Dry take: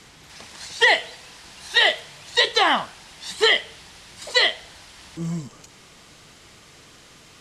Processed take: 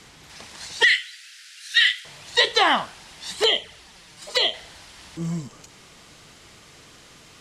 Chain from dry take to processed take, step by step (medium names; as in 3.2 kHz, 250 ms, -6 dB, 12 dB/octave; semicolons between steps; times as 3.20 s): 0.83–2.05 s: steep high-pass 1.4 kHz 72 dB/octave; 3.43–4.54 s: touch-sensitive flanger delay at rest 8.2 ms, full sweep at -16.5 dBFS